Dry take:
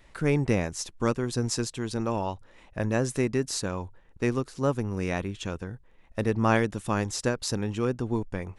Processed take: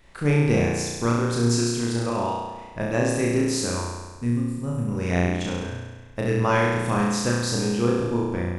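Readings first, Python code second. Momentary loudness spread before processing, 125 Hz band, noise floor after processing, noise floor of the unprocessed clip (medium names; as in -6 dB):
10 LU, +5.5 dB, -42 dBFS, -56 dBFS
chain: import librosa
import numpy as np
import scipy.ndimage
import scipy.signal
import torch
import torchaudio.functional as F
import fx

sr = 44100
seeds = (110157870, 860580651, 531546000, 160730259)

y = fx.spec_box(x, sr, start_s=3.82, length_s=1.05, low_hz=270.0, high_hz=7000.0, gain_db=-14)
y = fx.room_flutter(y, sr, wall_m=5.8, rt60_s=1.3)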